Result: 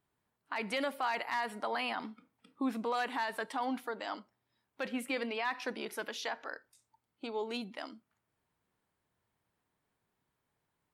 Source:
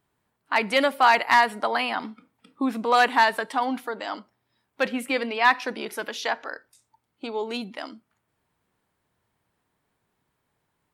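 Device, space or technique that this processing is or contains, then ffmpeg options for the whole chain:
stacked limiters: -af "alimiter=limit=-13.5dB:level=0:latency=1:release=131,alimiter=limit=-17.5dB:level=0:latency=1:release=17,volume=-7.5dB"

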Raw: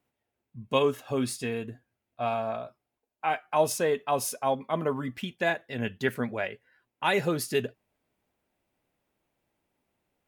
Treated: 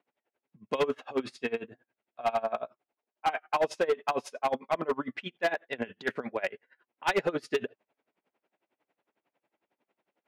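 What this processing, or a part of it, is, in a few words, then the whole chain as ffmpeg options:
helicopter radio: -af "highpass=320,lowpass=2900,aeval=exprs='val(0)*pow(10,-24*(0.5-0.5*cos(2*PI*11*n/s))/20)':channel_layout=same,asoftclip=type=hard:threshold=-28dB,volume=7.5dB"

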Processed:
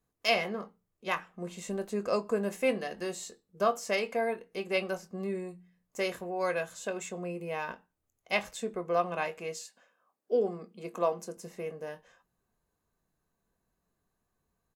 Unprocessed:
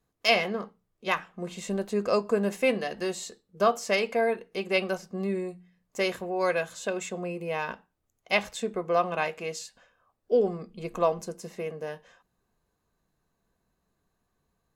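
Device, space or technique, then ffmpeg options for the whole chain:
exciter from parts: -filter_complex "[0:a]asettb=1/sr,asplit=3[link_01][link_02][link_03];[link_01]atrim=end=9.594[link_04];[link_02]atrim=start=9.59:end=11.37,asetpts=PTS-STARTPTS,afade=type=in:duration=0.004:curve=qsin,afade=type=out:start_time=1.776:duration=0.004:curve=qsin,highpass=frequency=180:width=0.5412,highpass=frequency=180:width=1.3066[link_05];[link_03]atrim=start=11.366[link_06];[link_04][link_05]acrossfade=duration=0.004:curve1=hsin:curve2=qsin[link_07];[link_07][link_06]acrossfade=duration=0.004:curve1=qsin:curve2=hsin,asplit=2[link_08][link_09];[link_09]highpass=4500,asoftclip=type=tanh:threshold=-32dB,highpass=2100,volume=-6.5dB[link_10];[link_08][link_10]amix=inputs=2:normalize=0,asplit=2[link_11][link_12];[link_12]adelay=23,volume=-12.5dB[link_13];[link_11][link_13]amix=inputs=2:normalize=0,volume=-4.5dB"

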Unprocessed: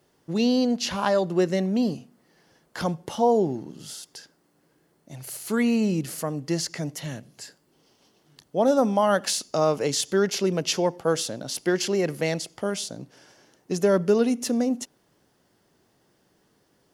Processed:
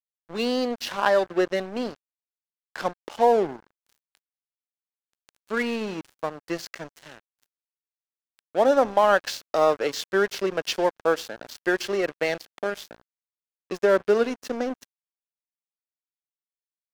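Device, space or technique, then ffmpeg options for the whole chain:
pocket radio on a weak battery: -af "highpass=390,lowpass=3900,aeval=exprs='sgn(val(0))*max(abs(val(0))-0.0133,0)':channel_layout=same,equalizer=frequency=1600:width_type=o:width=0.23:gain=4,volume=4dB"

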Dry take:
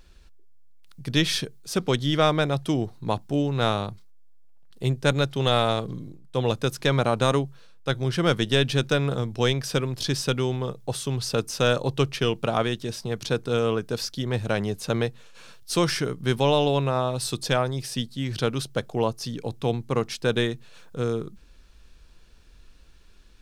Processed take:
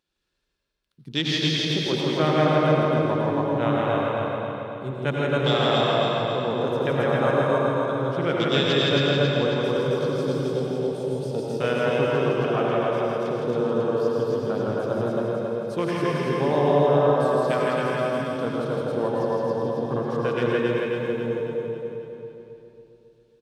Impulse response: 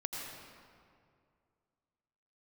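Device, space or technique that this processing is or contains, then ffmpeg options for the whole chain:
stadium PA: -filter_complex "[0:a]asettb=1/sr,asplit=3[link_01][link_02][link_03];[link_01]atrim=end=20.484[link_04];[link_02]atrim=start=20.48:end=20.99,asetpts=PTS-STARTPTS,afade=type=in:duration=0.004:curve=qsin,afade=type=out:start_time=0.506:duration=0.004:curve=qsin,aemphasis=mode=production:type=50fm[link_05];[link_03]atrim=start=20.986[link_06];[link_04][link_05]acrossfade=duration=0.004:curve1=hsin:curve2=qsin[link_07];[link_07][link_06]acrossfade=duration=0.004:curve1=qsin:curve2=hsin,afwtdn=0.0355,highpass=160,equalizer=frequency=3400:width_type=o:width=0.5:gain=4,aecho=1:1:163.3|271.1:0.708|0.562,aecho=1:1:273|546|819|1092|1365|1638|1911:0.631|0.334|0.177|0.0939|0.0498|0.0264|0.014[link_08];[1:a]atrim=start_sample=2205[link_09];[link_08][link_09]afir=irnorm=-1:irlink=0,volume=-2.5dB"

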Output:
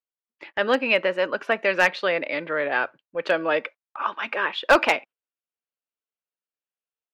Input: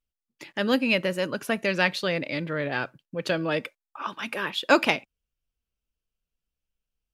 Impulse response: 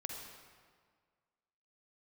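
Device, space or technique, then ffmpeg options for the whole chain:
walkie-talkie: -af "highpass=490,lowpass=2300,asoftclip=type=hard:threshold=-15.5dB,agate=range=-10dB:threshold=-49dB:ratio=16:detection=peak,volume=7dB"

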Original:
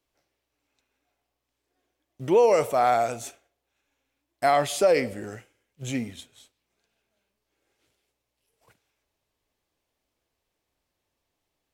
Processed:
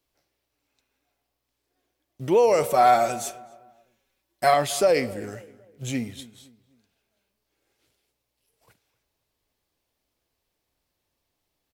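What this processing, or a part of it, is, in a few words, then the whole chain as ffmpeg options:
exciter from parts: -filter_complex "[0:a]asettb=1/sr,asplit=3[link_01][link_02][link_03];[link_01]atrim=end=2.634[link_04];[link_02]atrim=start=2.63:end=4.54,asetpts=PTS-STARTPTS,afade=type=in:duration=0.004:curve=qsin,afade=type=out:start_time=1.906:duration=0.004:curve=qsin,aecho=1:1:5.3:0.99,atrim=end_sample=84231[link_05];[link_03]atrim=start=4.536[link_06];[link_04][link_05]acrossfade=duration=0.004:curve1=hsin:curve2=qsin[link_07];[link_07][link_06]acrossfade=duration=0.004:curve1=qsin:curve2=hsin,bass=frequency=250:gain=2,treble=frequency=4000:gain=4,asplit=2[link_08][link_09];[link_09]highpass=frequency=4600:width=0.5412,highpass=frequency=4600:width=1.3066,asoftclip=type=tanh:threshold=-31.5dB,highpass=frequency=3700:width=0.5412,highpass=frequency=3700:width=1.3066,volume=-12dB[link_10];[link_08][link_10]amix=inputs=2:normalize=0,asplit=2[link_11][link_12];[link_12]adelay=257,lowpass=frequency=1700:poles=1,volume=-18.5dB,asplit=2[link_13][link_14];[link_14]adelay=257,lowpass=frequency=1700:poles=1,volume=0.37,asplit=2[link_15][link_16];[link_16]adelay=257,lowpass=frequency=1700:poles=1,volume=0.37[link_17];[link_11][link_13][link_15][link_17]amix=inputs=4:normalize=0"

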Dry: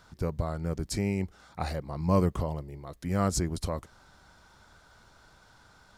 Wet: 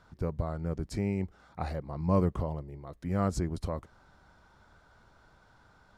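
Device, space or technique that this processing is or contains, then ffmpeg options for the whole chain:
through cloth: -af "highshelf=frequency=3100:gain=-12,volume=-1.5dB"

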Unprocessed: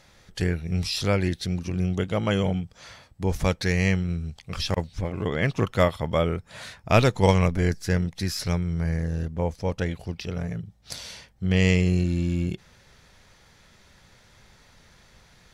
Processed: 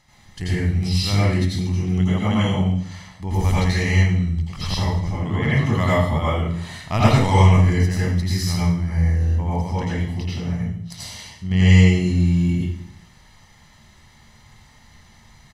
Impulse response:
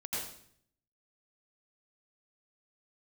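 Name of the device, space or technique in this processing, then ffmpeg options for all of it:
microphone above a desk: -filter_complex "[0:a]aecho=1:1:1:0.6[link_01];[1:a]atrim=start_sample=2205[link_02];[link_01][link_02]afir=irnorm=-1:irlink=0"

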